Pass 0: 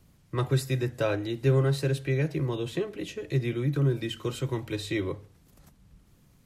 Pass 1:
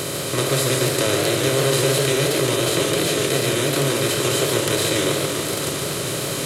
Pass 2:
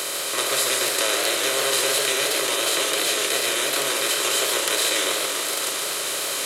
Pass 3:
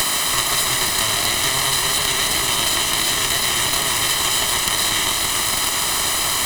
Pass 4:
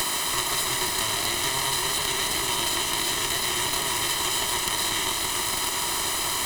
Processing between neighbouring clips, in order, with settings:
spectral levelling over time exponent 0.2; tone controls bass -6 dB, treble +12 dB; modulated delay 143 ms, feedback 66%, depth 189 cents, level -5 dB
Bessel high-pass 820 Hz, order 2; trim +1.5 dB
comb filter that takes the minimum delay 1 ms; three bands compressed up and down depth 100%; trim +4.5 dB
small resonant body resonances 360/950 Hz, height 7 dB; trim -7 dB

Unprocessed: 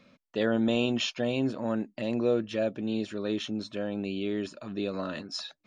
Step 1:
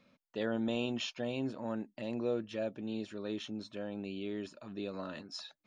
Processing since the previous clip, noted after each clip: peaking EQ 880 Hz +4 dB 0.29 oct; trim -8 dB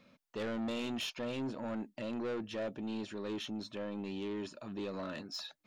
saturation -37 dBFS, distortion -8 dB; trim +3.5 dB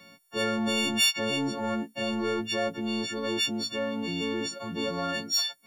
partials quantised in pitch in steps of 4 st; trim +8 dB

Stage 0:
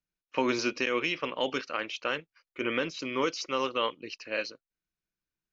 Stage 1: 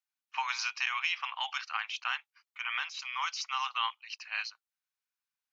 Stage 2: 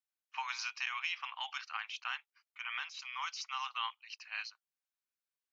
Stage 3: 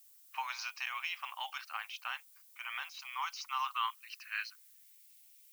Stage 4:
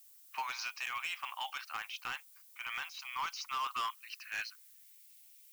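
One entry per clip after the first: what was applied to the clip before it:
Chebyshev high-pass 780 Hz, order 6
bass shelf 410 Hz -3.5 dB; trim -5.5 dB
added noise violet -59 dBFS; high-pass sweep 560 Hz -> 2.3 kHz, 2.65–5.11 s; trim -2 dB
hard clipper -33 dBFS, distortion -11 dB; trim +1.5 dB

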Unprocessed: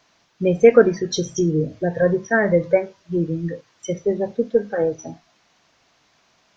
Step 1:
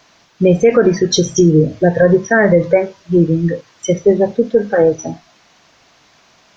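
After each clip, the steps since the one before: loudness maximiser +11 dB; trim -1 dB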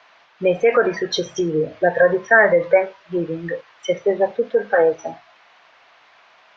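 three-band isolator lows -20 dB, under 540 Hz, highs -24 dB, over 3.4 kHz; hum notches 60/120 Hz; trim +2.5 dB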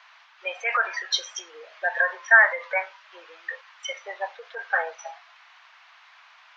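inverse Chebyshev high-pass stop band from 200 Hz, stop band 70 dB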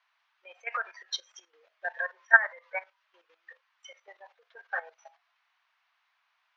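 level held to a coarse grid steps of 12 dB; upward expansion 1.5:1, over -42 dBFS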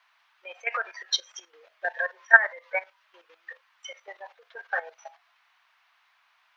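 dynamic bell 1.2 kHz, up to -7 dB, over -42 dBFS, Q 0.93; trim +8.5 dB

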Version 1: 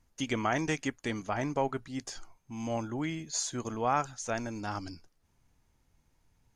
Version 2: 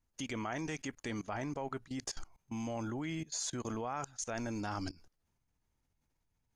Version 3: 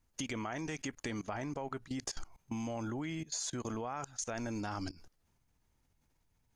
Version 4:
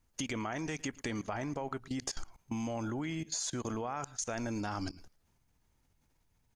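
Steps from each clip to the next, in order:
level held to a coarse grid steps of 21 dB; trim +4 dB
compression, threshold -41 dBFS, peak gain reduction 7.5 dB; trim +5.5 dB
echo from a far wall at 19 m, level -22 dB; trim +2 dB

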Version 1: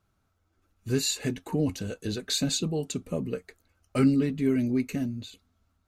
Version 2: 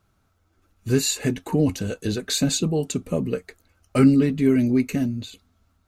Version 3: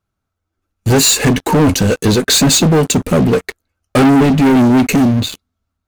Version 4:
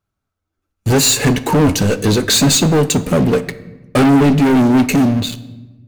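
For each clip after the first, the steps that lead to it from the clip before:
dynamic bell 4 kHz, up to -4 dB, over -44 dBFS, Q 1.2; trim +6.5 dB
waveshaping leveller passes 5
simulated room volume 650 m³, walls mixed, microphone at 0.32 m; trim -2 dB

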